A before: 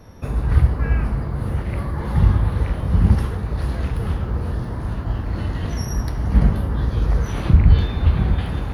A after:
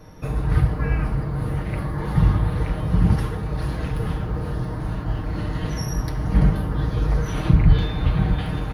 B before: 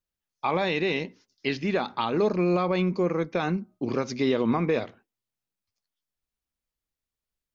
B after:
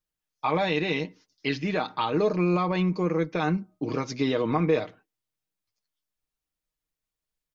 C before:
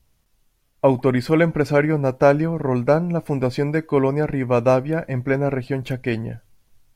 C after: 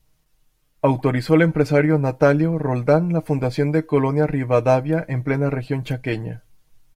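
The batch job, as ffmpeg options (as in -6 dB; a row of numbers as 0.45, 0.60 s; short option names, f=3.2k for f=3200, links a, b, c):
-af "aecho=1:1:6.5:0.56,volume=-1dB"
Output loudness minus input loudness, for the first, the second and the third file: -2.0, 0.0, +0.5 LU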